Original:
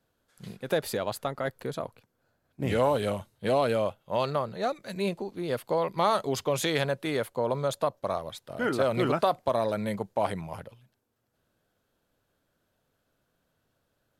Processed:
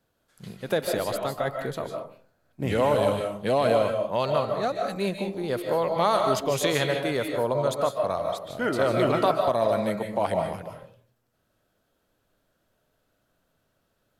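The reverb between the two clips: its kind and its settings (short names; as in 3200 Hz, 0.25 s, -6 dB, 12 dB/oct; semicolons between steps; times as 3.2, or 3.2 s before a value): digital reverb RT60 0.45 s, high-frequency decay 0.5×, pre-delay 0.11 s, DRR 3 dB; gain +1.5 dB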